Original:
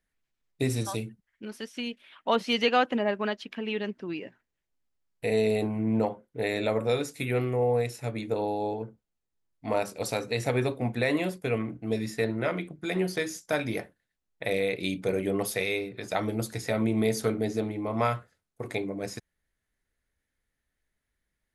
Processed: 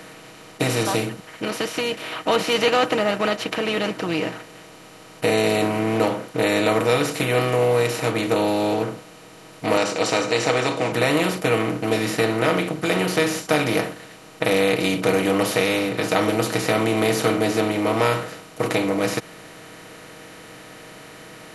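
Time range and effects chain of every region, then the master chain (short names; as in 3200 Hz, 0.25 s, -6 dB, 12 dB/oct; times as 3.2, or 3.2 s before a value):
9.77–10.92 steep low-pass 7500 Hz 48 dB/oct + tone controls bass -15 dB, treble +8 dB
whole clip: per-bin compression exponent 0.4; comb 6.3 ms, depth 54%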